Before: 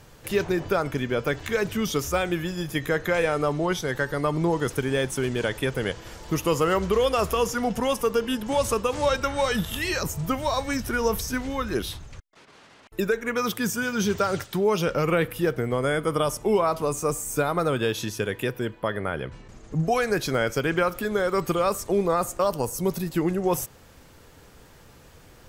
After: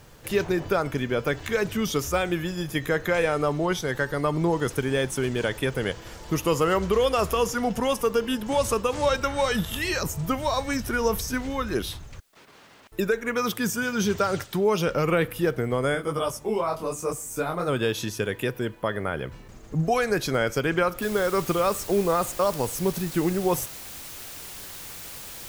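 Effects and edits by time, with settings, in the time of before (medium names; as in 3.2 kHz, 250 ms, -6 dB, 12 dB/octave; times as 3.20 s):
15.94–17.67 s: detune thickener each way 34 cents -> 50 cents
21.02 s: noise floor step -68 dB -40 dB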